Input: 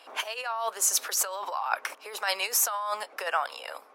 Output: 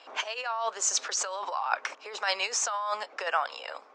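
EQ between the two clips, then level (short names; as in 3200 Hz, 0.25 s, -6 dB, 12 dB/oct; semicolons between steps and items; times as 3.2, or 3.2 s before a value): steep low-pass 7400 Hz 48 dB/oct; 0.0 dB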